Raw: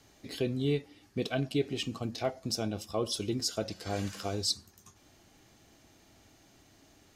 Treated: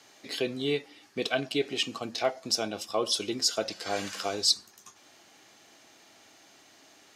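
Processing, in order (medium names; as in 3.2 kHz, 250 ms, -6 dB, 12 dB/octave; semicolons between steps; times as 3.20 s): frequency weighting A; trim +6.5 dB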